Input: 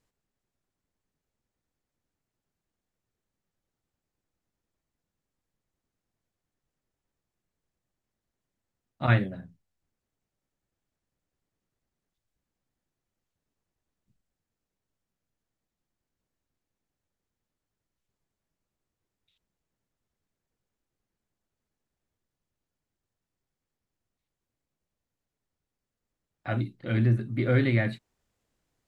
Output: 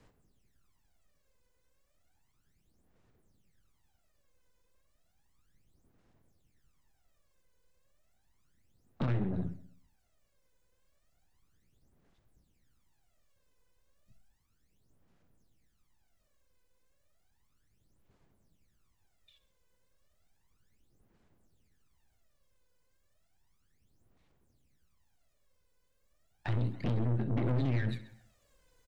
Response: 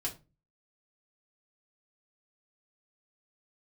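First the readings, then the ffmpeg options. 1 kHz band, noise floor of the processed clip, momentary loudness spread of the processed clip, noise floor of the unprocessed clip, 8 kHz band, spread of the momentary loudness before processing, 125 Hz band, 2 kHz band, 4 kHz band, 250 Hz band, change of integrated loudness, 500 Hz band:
-9.0 dB, -74 dBFS, 12 LU, under -85 dBFS, n/a, 16 LU, -6.0 dB, -14.0 dB, -8.0 dB, -5.5 dB, -7.0 dB, -9.0 dB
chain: -filter_complex "[0:a]aphaser=in_gain=1:out_gain=1:delay=2:decay=0.74:speed=0.33:type=sinusoidal,acompressor=threshold=-25dB:ratio=12,asplit=2[a][b];[b]adelay=128,lowpass=f=2.7k:p=1,volume=-20dB,asplit=2[c][d];[d]adelay=128,lowpass=f=2.7k:p=1,volume=0.35,asplit=2[e][f];[f]adelay=128,lowpass=f=2.7k:p=1,volume=0.35[g];[c][e][g]amix=inputs=3:normalize=0[h];[a][h]amix=inputs=2:normalize=0,acrossover=split=110|390|1700[i][j][k][l];[i]acompressor=threshold=-41dB:ratio=4[m];[j]acompressor=threshold=-30dB:ratio=4[n];[k]acompressor=threshold=-50dB:ratio=4[o];[l]acompressor=threshold=-52dB:ratio=4[p];[m][n][o][p]amix=inputs=4:normalize=0,aeval=exprs='(tanh(70.8*val(0)+0.65)-tanh(0.65))/70.8':c=same,asplit=2[q][r];[r]aecho=0:1:66|132|198|264:0.15|0.0643|0.0277|0.0119[s];[q][s]amix=inputs=2:normalize=0,volume=8.5dB"

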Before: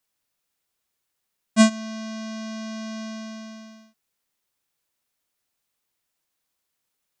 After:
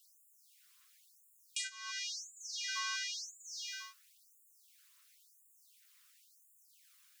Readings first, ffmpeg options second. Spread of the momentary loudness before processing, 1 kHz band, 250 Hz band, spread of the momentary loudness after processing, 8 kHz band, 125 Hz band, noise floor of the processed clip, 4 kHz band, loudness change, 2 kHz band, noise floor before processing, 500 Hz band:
19 LU, -14.0 dB, under -40 dB, 8 LU, -5.0 dB, n/a, -68 dBFS, -3.5 dB, -14.0 dB, -7.5 dB, -79 dBFS, under -40 dB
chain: -af "acompressor=threshold=-40dB:ratio=20,aphaser=in_gain=1:out_gain=1:delay=1.4:decay=0.32:speed=1.2:type=triangular,afftfilt=real='re*gte(b*sr/1024,950*pow(6900/950,0.5+0.5*sin(2*PI*0.96*pts/sr)))':imag='im*gte(b*sr/1024,950*pow(6900/950,0.5+0.5*sin(2*PI*0.96*pts/sr)))':win_size=1024:overlap=0.75,volume=12.5dB"

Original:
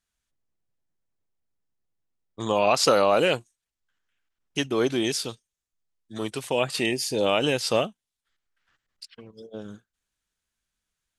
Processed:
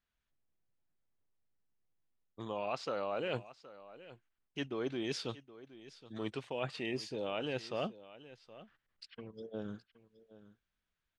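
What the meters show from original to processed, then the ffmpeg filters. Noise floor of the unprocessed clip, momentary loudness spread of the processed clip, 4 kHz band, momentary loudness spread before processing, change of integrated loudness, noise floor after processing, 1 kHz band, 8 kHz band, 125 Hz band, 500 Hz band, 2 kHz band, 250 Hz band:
under -85 dBFS, 18 LU, -16.0 dB, 17 LU, -15.5 dB, under -85 dBFS, -15.5 dB, -23.0 dB, -10.5 dB, -14.5 dB, -14.5 dB, -12.0 dB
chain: -af "lowpass=3.3k,areverse,acompressor=threshold=-32dB:ratio=6,areverse,aecho=1:1:770:0.141,volume=-2.5dB"

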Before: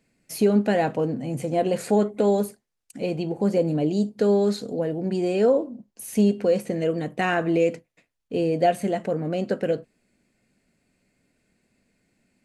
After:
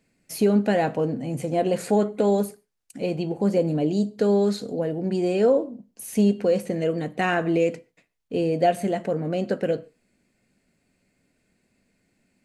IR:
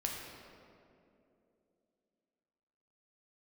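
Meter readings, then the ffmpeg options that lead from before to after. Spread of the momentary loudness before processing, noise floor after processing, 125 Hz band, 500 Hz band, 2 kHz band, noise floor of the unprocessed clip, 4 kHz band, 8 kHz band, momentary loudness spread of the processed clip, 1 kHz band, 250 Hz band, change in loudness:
9 LU, -71 dBFS, +0.5 dB, 0.0 dB, 0.0 dB, -78 dBFS, 0.0 dB, 0.0 dB, 9 LU, 0.0 dB, 0.0 dB, 0.0 dB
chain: -filter_complex "[0:a]asplit=2[a][b];[1:a]atrim=start_sample=2205,atrim=end_sample=6174,adelay=11[c];[b][c]afir=irnorm=-1:irlink=0,volume=-19dB[d];[a][d]amix=inputs=2:normalize=0"

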